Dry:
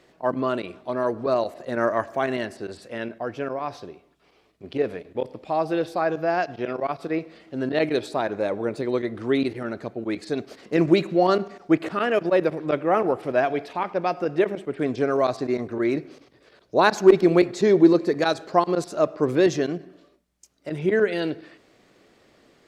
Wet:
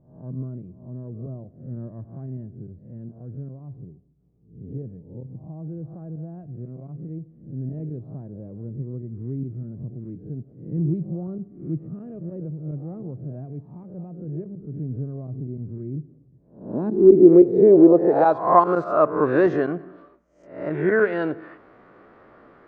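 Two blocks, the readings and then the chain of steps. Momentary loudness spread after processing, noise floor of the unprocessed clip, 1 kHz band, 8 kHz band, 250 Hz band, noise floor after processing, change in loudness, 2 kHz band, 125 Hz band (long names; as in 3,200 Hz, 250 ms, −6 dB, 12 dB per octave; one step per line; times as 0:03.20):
23 LU, −60 dBFS, −0.5 dB, can't be measured, +1.5 dB, −54 dBFS, +4.0 dB, −5.0 dB, +5.0 dB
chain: peak hold with a rise ahead of every peak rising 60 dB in 0.51 s
in parallel at −2 dB: downward compressor, threshold −34 dBFS, peak gain reduction 24 dB
on the sum: low-pass filter sweep 140 Hz → 1,300 Hz, 0:16.29–0:18.63
level −1.5 dB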